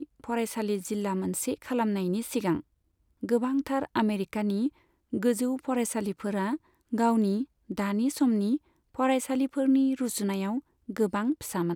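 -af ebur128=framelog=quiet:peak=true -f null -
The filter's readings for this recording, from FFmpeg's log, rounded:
Integrated loudness:
  I:         -28.8 LUFS
  Threshold: -39.0 LUFS
Loudness range:
  LRA:         2.5 LU
  Threshold: -48.9 LUFS
  LRA low:   -30.1 LUFS
  LRA high:  -27.5 LUFS
True peak:
  Peak:      -14.2 dBFS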